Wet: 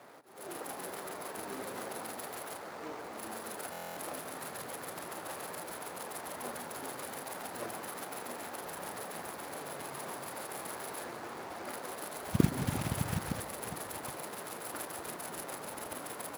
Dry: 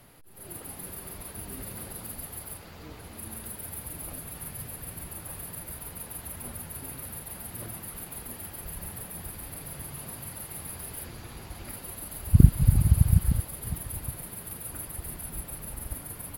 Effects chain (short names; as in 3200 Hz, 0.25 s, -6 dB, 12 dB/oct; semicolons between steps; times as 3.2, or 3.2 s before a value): median filter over 15 samples; HPF 440 Hz 12 dB/oct; reverb RT60 1.6 s, pre-delay 0.115 s, DRR 14.5 dB; stuck buffer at 3.71, samples 1024, times 10; gain +8.5 dB